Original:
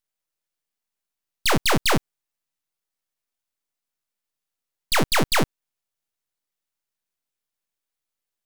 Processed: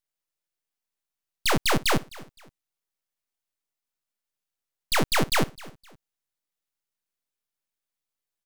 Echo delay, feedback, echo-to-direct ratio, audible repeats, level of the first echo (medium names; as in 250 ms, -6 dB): 258 ms, 32%, -20.0 dB, 2, -20.5 dB